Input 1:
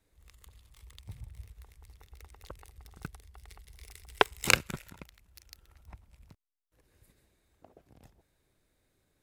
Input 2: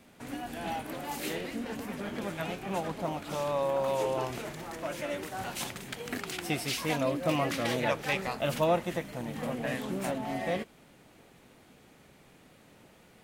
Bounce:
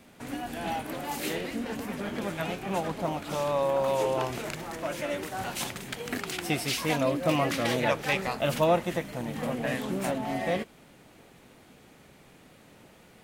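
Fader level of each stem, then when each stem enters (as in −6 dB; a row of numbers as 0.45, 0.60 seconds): −17.0, +3.0 decibels; 0.00, 0.00 seconds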